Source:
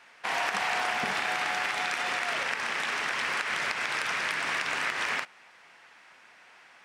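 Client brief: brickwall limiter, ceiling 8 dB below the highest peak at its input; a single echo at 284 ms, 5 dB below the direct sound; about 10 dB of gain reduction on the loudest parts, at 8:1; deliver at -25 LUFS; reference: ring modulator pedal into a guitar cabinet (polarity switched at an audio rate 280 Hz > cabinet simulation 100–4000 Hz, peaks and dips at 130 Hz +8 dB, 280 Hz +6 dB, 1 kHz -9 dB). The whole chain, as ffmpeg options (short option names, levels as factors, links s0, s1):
-af "acompressor=threshold=0.0158:ratio=8,alimiter=level_in=2.66:limit=0.0631:level=0:latency=1,volume=0.376,aecho=1:1:284:0.562,aeval=exprs='val(0)*sgn(sin(2*PI*280*n/s))':c=same,highpass=100,equalizer=f=130:t=q:w=4:g=8,equalizer=f=280:t=q:w=4:g=6,equalizer=f=1000:t=q:w=4:g=-9,lowpass=f=4000:w=0.5412,lowpass=f=4000:w=1.3066,volume=6.31"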